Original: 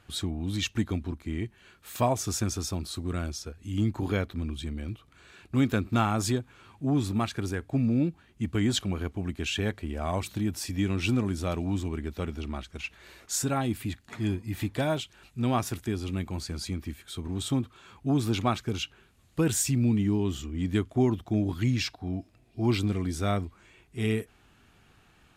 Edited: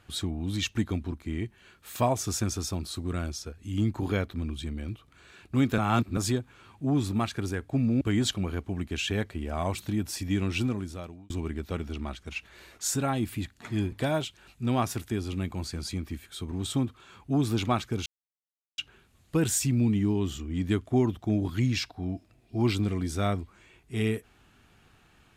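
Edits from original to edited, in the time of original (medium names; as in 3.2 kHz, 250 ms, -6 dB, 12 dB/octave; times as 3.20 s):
5.78–6.17 s: reverse
8.01–8.49 s: delete
10.94–11.78 s: fade out
14.40–14.68 s: delete
18.82 s: insert silence 0.72 s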